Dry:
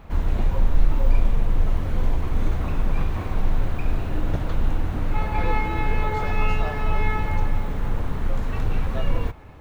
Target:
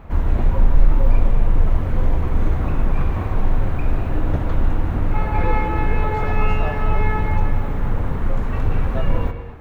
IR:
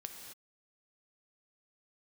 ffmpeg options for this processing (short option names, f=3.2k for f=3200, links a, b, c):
-filter_complex "[0:a]asplit=2[a][b];[1:a]atrim=start_sample=2205,lowpass=2.6k[c];[b][c]afir=irnorm=-1:irlink=0,volume=6dB[d];[a][d]amix=inputs=2:normalize=0,volume=-2.5dB"